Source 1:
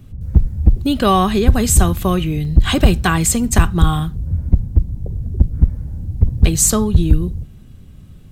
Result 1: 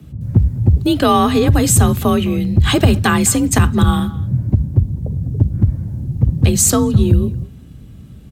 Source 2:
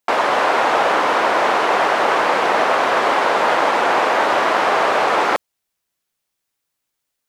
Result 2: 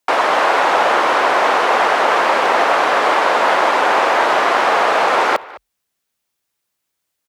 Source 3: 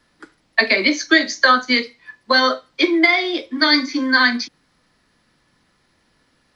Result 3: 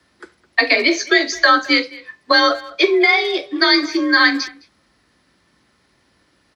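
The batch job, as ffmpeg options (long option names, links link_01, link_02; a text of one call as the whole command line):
ffmpeg -i in.wav -filter_complex "[0:a]asplit=2[link_01][link_02];[link_02]adelay=210,highpass=300,lowpass=3400,asoftclip=type=hard:threshold=-10.5dB,volume=-19dB[link_03];[link_01][link_03]amix=inputs=2:normalize=0,afreqshift=40,alimiter=level_in=3dB:limit=-1dB:release=50:level=0:latency=1,volume=-1dB" out.wav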